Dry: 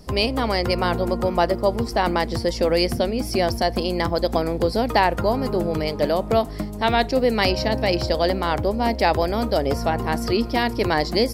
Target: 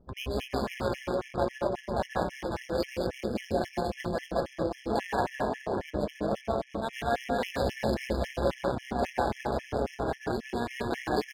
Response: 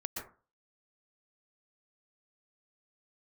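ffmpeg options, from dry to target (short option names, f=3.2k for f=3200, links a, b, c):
-filter_complex "[0:a]equalizer=f=4.8k:w=5.8:g=-3.5,aecho=1:1:220|418|596.2|756.6|900.9:0.631|0.398|0.251|0.158|0.1[a];[1:a]atrim=start_sample=2205,afade=t=out:st=0.22:d=0.01,atrim=end_sample=10143,asetrate=40131,aresample=44100[b];[a][b]afir=irnorm=-1:irlink=0,adynamicsmooth=sensitivity=5:basefreq=900,tremolo=f=130:d=0.621,afftfilt=real='re*gt(sin(2*PI*3.7*pts/sr)*(1-2*mod(floor(b*sr/1024/1700),2)),0)':imag='im*gt(sin(2*PI*3.7*pts/sr)*(1-2*mod(floor(b*sr/1024/1700),2)),0)':win_size=1024:overlap=0.75,volume=-8dB"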